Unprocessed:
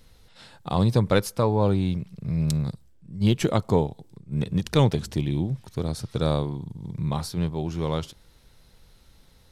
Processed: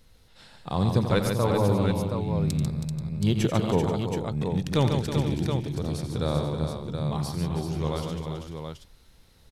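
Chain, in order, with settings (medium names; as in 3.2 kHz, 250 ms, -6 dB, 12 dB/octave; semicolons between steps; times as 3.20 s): multi-tap echo 87/144/322/386/483/724 ms -10/-6/-10.5/-7.5/-15/-6.5 dB; trim -3.5 dB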